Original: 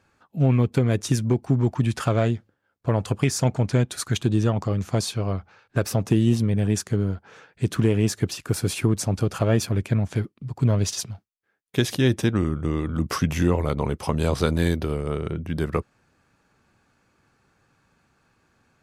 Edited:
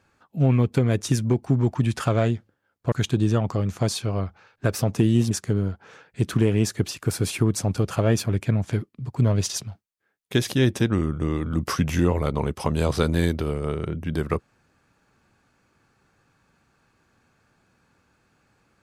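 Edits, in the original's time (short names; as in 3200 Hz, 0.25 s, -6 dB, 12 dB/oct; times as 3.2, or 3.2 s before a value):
2.92–4.04 cut
6.43–6.74 cut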